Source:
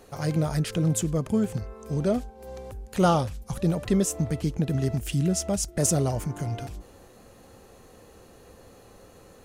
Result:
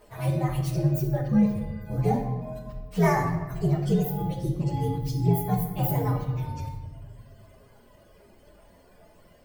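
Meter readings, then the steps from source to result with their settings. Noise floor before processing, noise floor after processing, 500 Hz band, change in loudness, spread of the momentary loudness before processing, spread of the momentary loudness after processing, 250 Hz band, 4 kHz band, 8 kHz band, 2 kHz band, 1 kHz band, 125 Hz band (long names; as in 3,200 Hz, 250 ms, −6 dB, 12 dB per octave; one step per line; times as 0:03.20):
−52 dBFS, −56 dBFS, −2.0 dB, 0.0 dB, 12 LU, 11 LU, 0.0 dB, −8.0 dB, −15.5 dB, +2.5 dB, +1.5 dB, +2.0 dB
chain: partials spread apart or drawn together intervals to 125%
reverb reduction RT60 1.5 s
rectangular room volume 990 cubic metres, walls mixed, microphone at 1.3 metres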